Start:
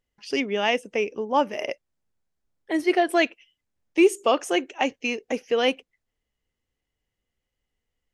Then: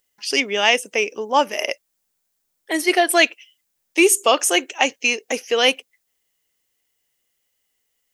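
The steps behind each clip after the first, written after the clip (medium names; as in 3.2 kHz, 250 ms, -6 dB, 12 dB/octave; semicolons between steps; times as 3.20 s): RIAA curve recording; trim +5.5 dB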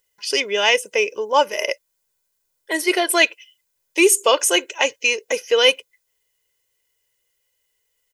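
comb 2 ms, depth 66%; trim -1 dB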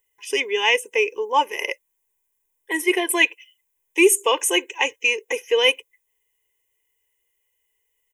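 static phaser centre 920 Hz, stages 8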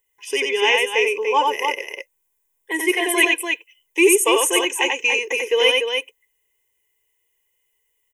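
loudspeakers at several distances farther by 31 m -3 dB, 100 m -6 dB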